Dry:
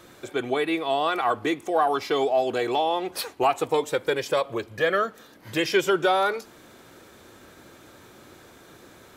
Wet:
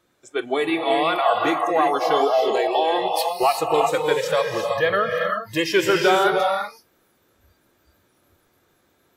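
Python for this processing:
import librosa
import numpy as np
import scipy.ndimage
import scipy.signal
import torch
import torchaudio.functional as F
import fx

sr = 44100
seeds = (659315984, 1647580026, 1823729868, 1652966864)

y = fx.rev_gated(x, sr, seeds[0], gate_ms=400, shape='rising', drr_db=1.0)
y = fx.noise_reduce_blind(y, sr, reduce_db=19)
y = F.gain(torch.from_numpy(y), 2.5).numpy()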